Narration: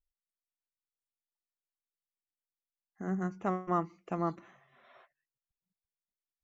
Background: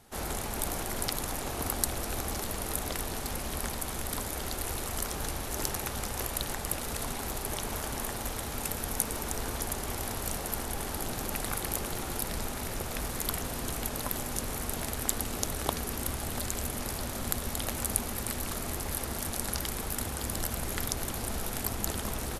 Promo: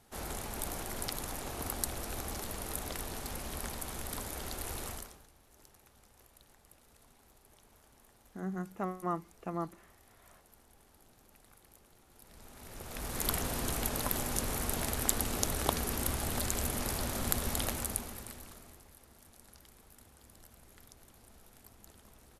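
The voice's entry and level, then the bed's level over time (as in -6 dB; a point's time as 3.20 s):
5.35 s, -4.0 dB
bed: 4.90 s -5.5 dB
5.28 s -28 dB
12.08 s -28 dB
13.26 s 0 dB
17.62 s 0 dB
18.94 s -24.5 dB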